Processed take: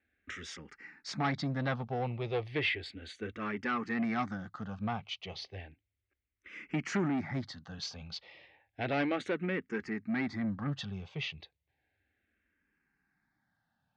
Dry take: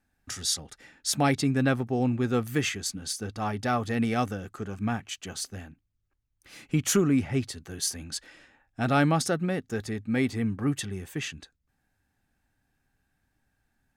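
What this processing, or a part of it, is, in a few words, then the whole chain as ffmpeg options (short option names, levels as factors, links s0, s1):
barber-pole phaser into a guitar amplifier: -filter_complex "[0:a]asplit=2[s0][s1];[s1]afreqshift=-0.33[s2];[s0][s2]amix=inputs=2:normalize=1,asoftclip=type=tanh:threshold=0.0562,highpass=86,equalizer=f=120:t=q:w=4:g=-5,equalizer=f=260:t=q:w=4:g=-4,equalizer=f=2100:t=q:w=4:g=7,lowpass=f=4300:w=0.5412,lowpass=f=4300:w=1.3066"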